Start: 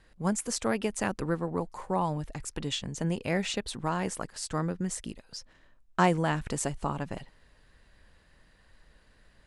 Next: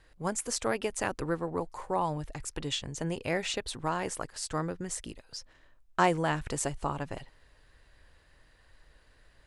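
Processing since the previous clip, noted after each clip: bell 200 Hz -10 dB 0.49 oct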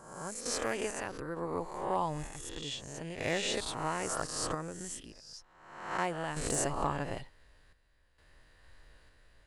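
spectral swells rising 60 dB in 0.92 s; random-step tremolo 2.2 Hz, depth 75%; overloaded stage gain 19 dB; gain -1.5 dB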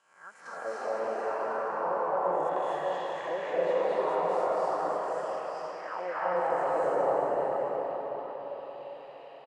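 auto-wah 520–3000 Hz, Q 4.8, down, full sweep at -29 dBFS; tapped delay 0.395/0.738 s -9/-16.5 dB; reverb RT60 5.5 s, pre-delay 0.204 s, DRR -10 dB; gain +4.5 dB

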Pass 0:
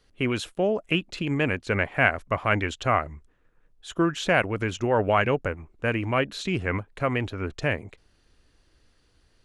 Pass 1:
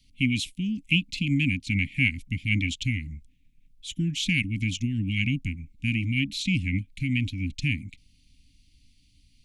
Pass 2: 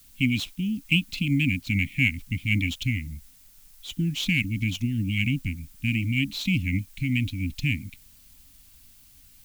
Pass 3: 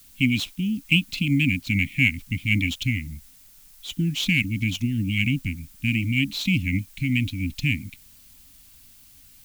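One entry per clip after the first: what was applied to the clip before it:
Chebyshev band-stop 280–2200 Hz, order 5; gain +4 dB
median filter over 5 samples; added noise blue -56 dBFS; gain +1 dB
low shelf 80 Hz -5.5 dB; gain +3 dB

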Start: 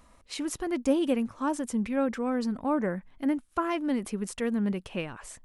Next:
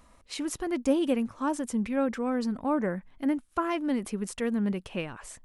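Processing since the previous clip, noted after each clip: nothing audible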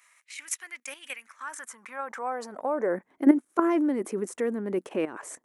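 level quantiser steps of 12 dB; high-pass sweep 2300 Hz -> 340 Hz, 1.17–3.1; band shelf 3600 Hz -8.5 dB 1.2 oct; gain +7.5 dB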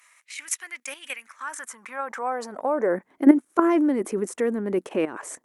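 gain +4 dB; Opus 96 kbps 48000 Hz

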